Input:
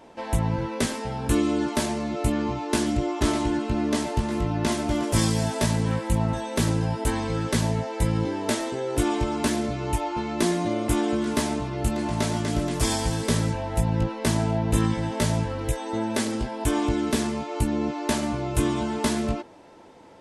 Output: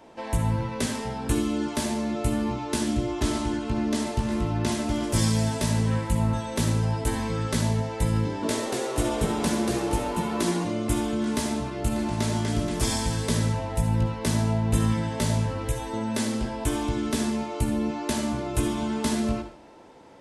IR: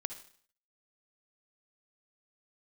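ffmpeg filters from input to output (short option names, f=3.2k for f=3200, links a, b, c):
-filter_complex "[0:a]acrossover=split=280|3000[a][b][c];[b]acompressor=threshold=-28dB:ratio=6[d];[a][d][c]amix=inputs=3:normalize=0,asettb=1/sr,asplit=3[e][f][g];[e]atrim=end=8.194[h];[f]atrim=start=8.19:end=10.64,asetpts=PTS-STARTPTS,afade=t=in:d=0.004:c=qsin,afade=t=out:st=2.446:d=0.004:c=qsin,asplit=5[i][j][k][l][m];[j]adelay=235,afreqshift=120,volume=-3.5dB[n];[k]adelay=470,afreqshift=240,volume=-12.9dB[o];[l]adelay=705,afreqshift=360,volume=-22.2dB[p];[m]adelay=940,afreqshift=480,volume=-31.6dB[q];[i][n][o][p][q]amix=inputs=5:normalize=0,atrim=end_sample=108045[r];[g]atrim=start=10.636[s];[h][r]acrossfade=d=0.004:c1=hsin:c2=qsin[t];[t][s]acrossfade=d=0.004:c1=qsin:c2=hsin[u];[1:a]atrim=start_sample=2205[v];[u][v]afir=irnorm=-1:irlink=0"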